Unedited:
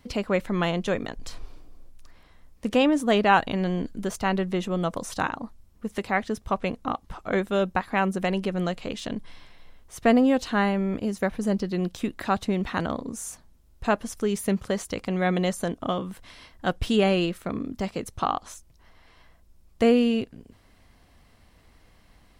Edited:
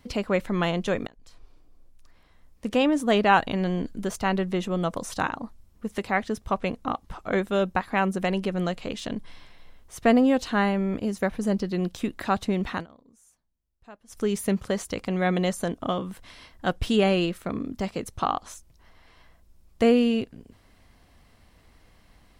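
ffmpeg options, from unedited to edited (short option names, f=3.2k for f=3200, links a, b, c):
-filter_complex "[0:a]asplit=4[a][b][c][d];[a]atrim=end=1.07,asetpts=PTS-STARTPTS,afade=t=out:st=1.066:d=0.004:c=hsin:silence=0.0944061[e];[b]atrim=start=1.07:end=12.86,asetpts=PTS-STARTPTS,afade=t=in:d=2.09:silence=0.0944061,afade=t=out:st=11.66:d=0.13:silence=0.0668344[f];[c]atrim=start=12.86:end=14.07,asetpts=PTS-STARTPTS,volume=-23.5dB[g];[d]atrim=start=14.07,asetpts=PTS-STARTPTS,afade=t=in:d=0.13:silence=0.0668344[h];[e][f][g][h]concat=n=4:v=0:a=1"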